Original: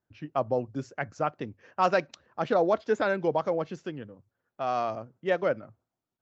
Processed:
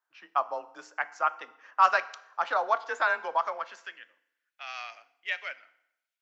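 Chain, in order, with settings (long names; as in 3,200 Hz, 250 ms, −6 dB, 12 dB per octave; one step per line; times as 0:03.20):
parametric band 120 Hz −12 dB 0.25 octaves
frequency shifter +29 Hz
high-pass filter sweep 1,100 Hz → 2,300 Hz, 0:03.44–0:04.17
feedback delay network reverb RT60 0.81 s, low-frequency decay 1.1×, high-frequency decay 0.85×, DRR 13.5 dB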